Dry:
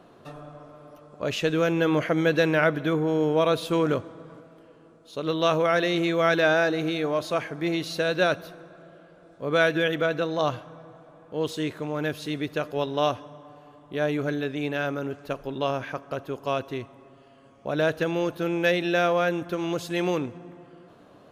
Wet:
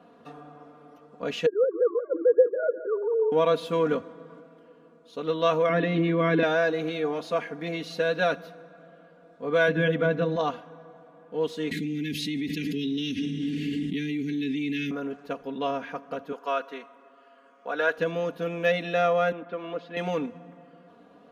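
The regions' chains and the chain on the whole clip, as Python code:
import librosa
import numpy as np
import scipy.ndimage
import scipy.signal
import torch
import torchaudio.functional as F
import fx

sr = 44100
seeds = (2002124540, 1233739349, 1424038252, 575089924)

y = fx.chain(x, sr, fx.sine_speech(),
    fx.steep_lowpass(hz=1200.0, slope=48),
    fx.echo_feedback(ms=173, feedback_pct=41, wet_db=-14.0), at=(1.46, 3.32))
y = fx.chain(y, sr, fx.bandpass_edges(low_hz=200.0, high_hz=3000.0),
    fx.low_shelf_res(hz=430.0, db=10.5, q=1.5),
    fx.comb(ms=7.0, depth=0.36), at=(5.69, 6.43))
y = fx.chain(y, sr, fx.bass_treble(bass_db=14, treble_db=-5),
    fx.hum_notches(base_hz=50, count=10), at=(9.68, 10.36))
y = fx.chain(y, sr, fx.cheby1_bandstop(low_hz=360.0, high_hz=2000.0, order=4),
    fx.env_flatten(amount_pct=100), at=(11.71, 14.91))
y = fx.chain(y, sr, fx.highpass(hz=430.0, slope=12),
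    fx.peak_eq(hz=1400.0, db=8.0, octaves=0.65), at=(16.32, 17.98))
y = fx.chain(y, sr, fx.highpass(hz=270.0, slope=12),
    fx.air_absorb(metres=310.0), at=(19.32, 19.97))
y = scipy.signal.sosfilt(scipy.signal.butter(2, 100.0, 'highpass', fs=sr, output='sos'), y)
y = fx.high_shelf(y, sr, hz=5100.0, db=-10.5)
y = y + 0.94 * np.pad(y, (int(4.2 * sr / 1000.0), 0))[:len(y)]
y = y * 10.0 ** (-4.0 / 20.0)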